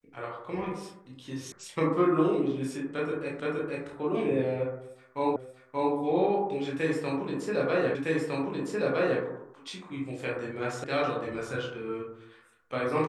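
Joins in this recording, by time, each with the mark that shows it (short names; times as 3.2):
1.52 sound cut off
3.4 repeat of the last 0.47 s
5.36 repeat of the last 0.58 s
7.95 repeat of the last 1.26 s
10.84 sound cut off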